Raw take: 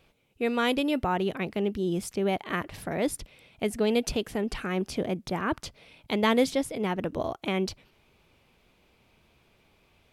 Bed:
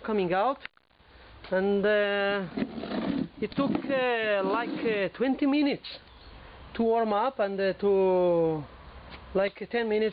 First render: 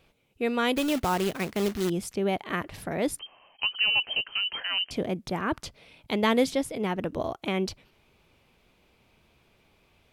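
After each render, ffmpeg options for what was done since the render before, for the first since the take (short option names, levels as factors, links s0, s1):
-filter_complex "[0:a]asettb=1/sr,asplit=3[s0][s1][s2];[s0]atrim=end=0.764[s3];[s1]atrim=start=0.76:end=1.9,asetpts=PTS-STARTPTS,afade=t=in:d=0.004:c=qsin,afade=t=out:st=1.136:d=0.004:c=qsin,acrusher=bits=2:mode=log:mix=0:aa=0.000001[s4];[s2]atrim=start=1.896[s5];[s3][s4]acrossfade=d=0.004:c1=hsin:c2=qsin[s6];[s6][s5]acrossfade=d=0.004:c1=qsin:c2=hsin,asettb=1/sr,asplit=3[s7][s8][s9];[s7]atrim=end=3.194[s10];[s8]atrim=start=3.19:end=4.91,asetpts=PTS-STARTPTS,afade=t=in:d=0.004:c=qsin,afade=t=out:st=1.716:d=0.004:c=qsin,lowpass=f=2700:t=q:w=0.5098,lowpass=f=2700:t=q:w=0.6013,lowpass=f=2700:t=q:w=0.9,lowpass=f=2700:t=q:w=2.563,afreqshift=-3200[s11];[s9]atrim=start=4.906[s12];[s10][s11]acrossfade=d=0.004:c1=hsin:c2=qsin[s13];[s13][s12]acrossfade=d=0.004:c1=qsin:c2=hsin"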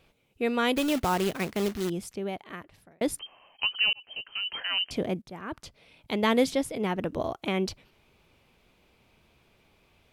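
-filter_complex "[0:a]asplit=4[s0][s1][s2][s3];[s0]atrim=end=3.01,asetpts=PTS-STARTPTS,afade=t=out:st=1.44:d=1.57[s4];[s1]atrim=start=3.01:end=3.93,asetpts=PTS-STARTPTS,afade=t=in:d=0.004:c=hsin,afade=t=out:st=0.916:d=0.004:c=hsin[s5];[s2]atrim=start=3.93:end=5.22,asetpts=PTS-STARTPTS,afade=t=in:d=0.75,afade=t=out:st=1.286:d=0.004:c=hsin:silence=0.188365[s6];[s3]atrim=start=5.22,asetpts=PTS-STARTPTS,afade=t=in:d=1.17:silence=0.188365[s7];[s4][s5][s6][s7]concat=n=4:v=0:a=1"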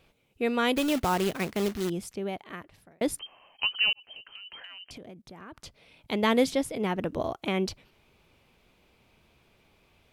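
-filter_complex "[0:a]asplit=3[s0][s1][s2];[s0]afade=t=out:st=3.92:d=0.02[s3];[s1]acompressor=threshold=0.00891:ratio=12:attack=3.2:release=140:knee=1:detection=peak,afade=t=in:st=3.92:d=0.02,afade=t=out:st=5.58:d=0.02[s4];[s2]afade=t=in:st=5.58:d=0.02[s5];[s3][s4][s5]amix=inputs=3:normalize=0"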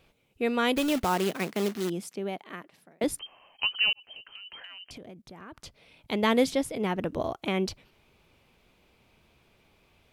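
-filter_complex "[0:a]asettb=1/sr,asplit=3[s0][s1][s2];[s0]atrim=end=1.044[s3];[s1]atrim=start=1.04:end=3.04,asetpts=PTS-STARTPTS,afade=t=in:d=0.004:c=qsin,afade=t=out:st=1.996:d=0.004:c=qsin,highpass=f=160:w=0.5412,highpass=f=160:w=1.3066[s4];[s2]atrim=start=3.036[s5];[s3][s4]acrossfade=d=0.004:c1=hsin:c2=qsin[s6];[s6][s5]acrossfade=d=0.004:c1=qsin:c2=hsin"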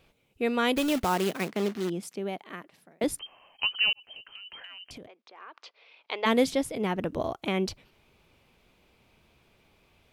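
-filter_complex "[0:a]asettb=1/sr,asplit=3[s0][s1][s2];[s0]atrim=end=1.484[s3];[s1]atrim=start=1.48:end=2.03,asetpts=PTS-STARTPTS,afade=t=in:d=0.004:c=qsin,afade=t=out:st=0.546:d=0.004:c=qsin,highshelf=f=6300:g=-9.5[s4];[s2]atrim=start=2.026[s5];[s3][s4]acrossfade=d=0.004:c1=hsin:c2=qsin[s6];[s6][s5]acrossfade=d=0.004:c1=qsin:c2=hsin,asplit=3[s7][s8][s9];[s7]afade=t=out:st=5.06:d=0.02[s10];[s8]highpass=f=460:w=0.5412,highpass=f=460:w=1.3066,equalizer=f=610:t=q:w=4:g=-4,equalizer=f=1100:t=q:w=4:g=4,equalizer=f=2500:t=q:w=4:g=3,lowpass=f=4900:w=0.5412,lowpass=f=4900:w=1.3066,afade=t=in:st=5.06:d=0.02,afade=t=out:st=6.25:d=0.02[s11];[s9]afade=t=in:st=6.25:d=0.02[s12];[s10][s11][s12]amix=inputs=3:normalize=0"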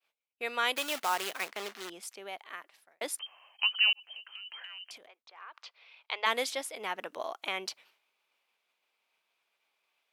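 -af "highpass=870,agate=range=0.0224:threshold=0.00112:ratio=3:detection=peak"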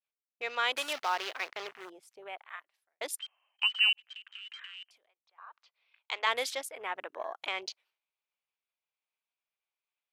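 -af "afwtdn=0.00501,equalizer=f=200:t=o:w=0.93:g=-14.5"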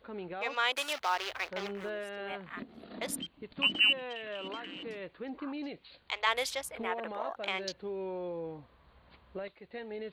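-filter_complex "[1:a]volume=0.188[s0];[0:a][s0]amix=inputs=2:normalize=0"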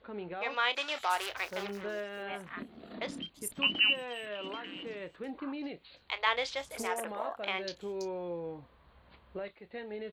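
-filter_complex "[0:a]asplit=2[s0][s1];[s1]adelay=29,volume=0.224[s2];[s0][s2]amix=inputs=2:normalize=0,acrossover=split=5900[s3][s4];[s4]adelay=330[s5];[s3][s5]amix=inputs=2:normalize=0"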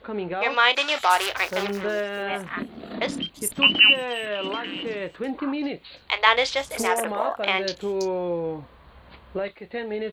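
-af "volume=3.76"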